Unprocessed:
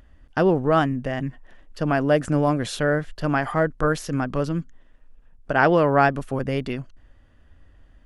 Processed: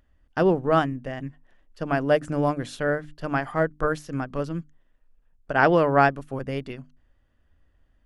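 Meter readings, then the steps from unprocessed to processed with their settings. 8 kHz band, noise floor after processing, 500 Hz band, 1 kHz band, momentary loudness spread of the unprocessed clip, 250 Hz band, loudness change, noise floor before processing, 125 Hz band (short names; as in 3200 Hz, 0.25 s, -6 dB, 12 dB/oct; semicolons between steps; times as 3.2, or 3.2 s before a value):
-8.5 dB, -65 dBFS, -1.5 dB, -1.5 dB, 11 LU, -3.5 dB, -2.0 dB, -54 dBFS, -4.5 dB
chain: notches 50/100/150/200/250/300 Hz; upward expander 1.5:1, over -36 dBFS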